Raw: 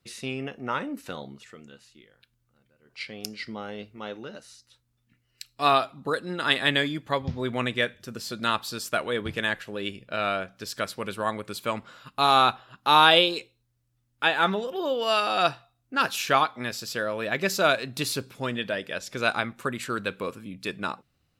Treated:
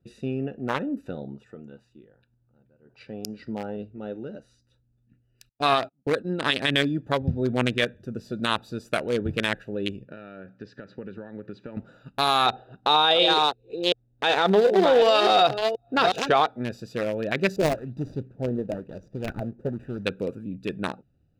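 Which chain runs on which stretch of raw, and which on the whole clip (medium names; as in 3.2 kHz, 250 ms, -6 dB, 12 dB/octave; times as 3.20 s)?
1.28–3.77 s: high-pass 48 Hz + peaking EQ 950 Hz +9.5 dB
5.49–6.70 s: low-pass 9.1 kHz + gate -40 dBFS, range -33 dB
10.05–11.77 s: cabinet simulation 120–4700 Hz, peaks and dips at 680 Hz -9 dB, 1.8 kHz +6 dB, 3.4 kHz -4 dB + compression, threshold -35 dBFS
12.46–16.49 s: chunks repeated in reverse 366 ms, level -8 dB + low-pass 6 kHz + small resonant body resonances 460/710/3700 Hz, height 10 dB, ringing for 20 ms
17.56–20.06 s: median filter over 41 samples + peaking EQ 450 Hz -4 dB 2.7 oct + sweeping bell 1 Hz 400–6100 Hz +10 dB
whole clip: local Wiener filter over 41 samples; treble shelf 3.7 kHz +6 dB; loudness maximiser +14.5 dB; trim -8.5 dB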